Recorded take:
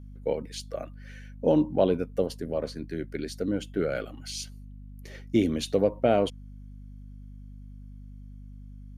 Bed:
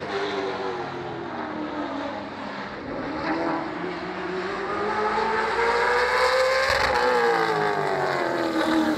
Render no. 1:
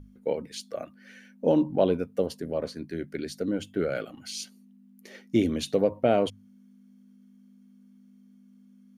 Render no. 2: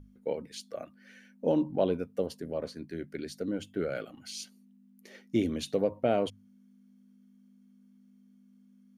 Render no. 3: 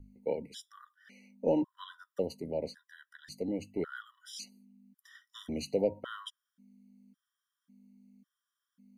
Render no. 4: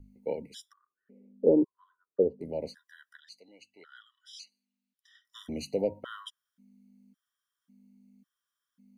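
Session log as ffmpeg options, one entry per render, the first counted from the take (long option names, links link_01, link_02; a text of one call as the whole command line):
ffmpeg -i in.wav -af "bandreject=frequency=50:width_type=h:width=6,bandreject=frequency=100:width_type=h:width=6,bandreject=frequency=150:width_type=h:width=6" out.wav
ffmpeg -i in.wav -af "volume=-4.5dB" out.wav
ffmpeg -i in.wav -filter_complex "[0:a]acrossover=split=330|2800[link_01][link_02][link_03];[link_01]asoftclip=type=tanh:threshold=-32dB[link_04];[link_04][link_02][link_03]amix=inputs=3:normalize=0,afftfilt=real='re*gt(sin(2*PI*0.91*pts/sr)*(1-2*mod(floor(b*sr/1024/980),2)),0)':imag='im*gt(sin(2*PI*0.91*pts/sr)*(1-2*mod(floor(b*sr/1024/980),2)),0)':win_size=1024:overlap=0.75" out.wav
ffmpeg -i in.wav -filter_complex "[0:a]asettb=1/sr,asplit=3[link_01][link_02][link_03];[link_01]atrim=end=0.734[link_04];[link_02]atrim=start=0.73:end=2.41,asetpts=PTS-STARTPTS,afade=type=in:duration=0.004:curve=qsin,afade=type=out:start_time=1.676:duration=0.004:curve=qsin,lowpass=frequency=420:width_type=q:width=4.4[link_05];[link_03]atrim=start=2.406[link_06];[link_04][link_05]acrossfade=duration=0.004:curve1=hsin:curve2=qsin[link_07];[link_07][link_06]acrossfade=duration=0.004:curve1=qsin:curve2=hsin,asettb=1/sr,asplit=3[link_08][link_09][link_10];[link_08]atrim=end=3.204[link_11];[link_09]atrim=start=3.2:end=5.25,asetpts=PTS-STARTPTS,afade=type=in:duration=0.004:curve=qsin,afade=type=out:start_time=2.046:duration=0.004:curve=qsin,bandpass=frequency=3600:width_type=q:width=1.4[link_12];[link_10]atrim=start=5.246[link_13];[link_11][link_12]acrossfade=duration=0.004:curve1=hsin:curve2=qsin[link_14];[link_14][link_13]acrossfade=duration=0.004:curve1=qsin:curve2=hsin" out.wav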